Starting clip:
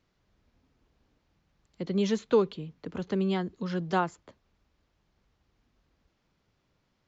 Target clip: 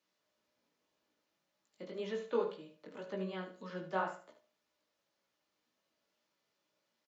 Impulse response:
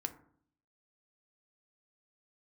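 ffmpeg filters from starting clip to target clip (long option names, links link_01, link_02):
-filter_complex "[0:a]highpass=330,highshelf=frequency=4500:gain=10.5,acrossover=split=2700[link_01][link_02];[link_02]acompressor=threshold=-55dB:ratio=4:attack=1:release=60[link_03];[link_01][link_03]amix=inputs=2:normalize=0,flanger=delay=15:depth=6.2:speed=1.9,aecho=1:1:74|148|222:0.299|0.0716|0.0172[link_04];[1:a]atrim=start_sample=2205,asetrate=88200,aresample=44100[link_05];[link_04][link_05]afir=irnorm=-1:irlink=0,volume=1.5dB"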